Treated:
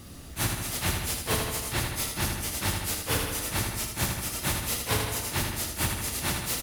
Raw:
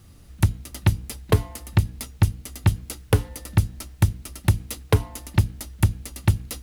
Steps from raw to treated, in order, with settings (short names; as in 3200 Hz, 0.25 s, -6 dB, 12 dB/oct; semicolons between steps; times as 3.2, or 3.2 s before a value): phase scrambler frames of 0.1 s; feedback echo 79 ms, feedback 49%, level -8 dB; spectral compressor 2:1; gain -6.5 dB